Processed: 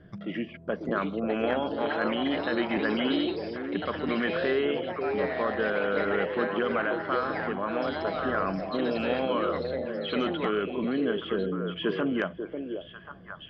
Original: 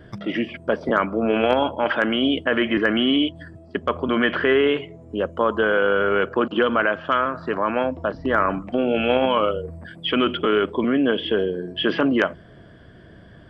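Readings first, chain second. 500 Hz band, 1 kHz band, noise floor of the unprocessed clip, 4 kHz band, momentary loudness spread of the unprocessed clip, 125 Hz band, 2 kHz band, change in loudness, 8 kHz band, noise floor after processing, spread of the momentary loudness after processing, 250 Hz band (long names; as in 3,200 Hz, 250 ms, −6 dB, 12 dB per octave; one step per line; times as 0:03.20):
−7.0 dB, −7.5 dB, −46 dBFS, −10.0 dB, 8 LU, −4.5 dB, −8.0 dB, −7.5 dB, can't be measured, −47 dBFS, 7 LU, −7.0 dB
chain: parametric band 180 Hz +11.5 dB 0.24 octaves
notch filter 910 Hz, Q 12
on a send: echo through a band-pass that steps 543 ms, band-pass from 420 Hz, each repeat 1.4 octaves, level −3 dB
on the sum: delay with pitch and tempo change per echo 746 ms, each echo +4 semitones, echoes 2, each echo −6 dB
high-frequency loss of the air 120 metres
level −9 dB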